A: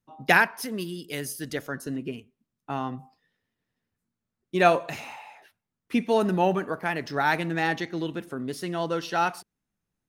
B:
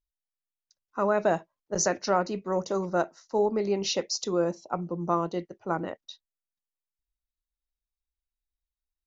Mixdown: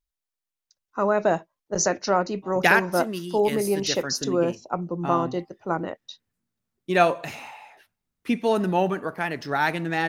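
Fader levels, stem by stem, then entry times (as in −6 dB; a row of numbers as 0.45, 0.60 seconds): +0.5, +3.0 decibels; 2.35, 0.00 seconds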